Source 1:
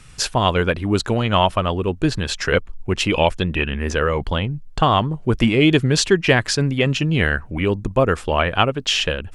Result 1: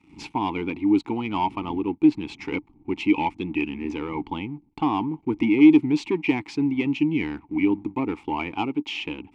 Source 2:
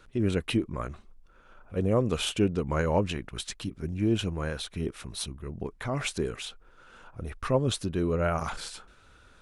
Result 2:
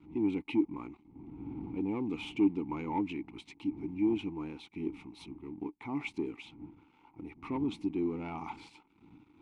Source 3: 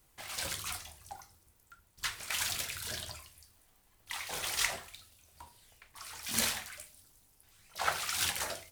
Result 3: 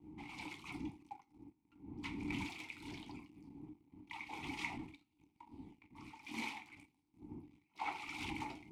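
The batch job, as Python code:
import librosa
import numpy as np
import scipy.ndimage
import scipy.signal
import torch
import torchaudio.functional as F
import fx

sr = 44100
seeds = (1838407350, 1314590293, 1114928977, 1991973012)

y = fx.dmg_wind(x, sr, seeds[0], corner_hz=100.0, level_db=-38.0)
y = fx.leveller(y, sr, passes=2)
y = fx.vowel_filter(y, sr, vowel='u')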